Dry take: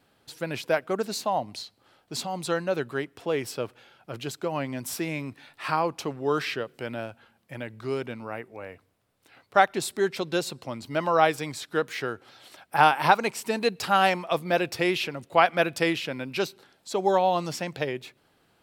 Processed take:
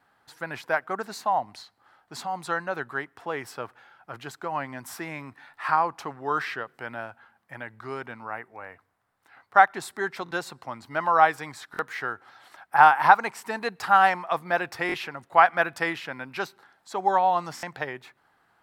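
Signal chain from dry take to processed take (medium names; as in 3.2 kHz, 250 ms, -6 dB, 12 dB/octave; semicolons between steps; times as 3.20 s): high-order bell 1.2 kHz +11.5 dB; buffer glitch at 10.24/11.72/14.87/17.56 s, samples 1024, times 2; trim -7 dB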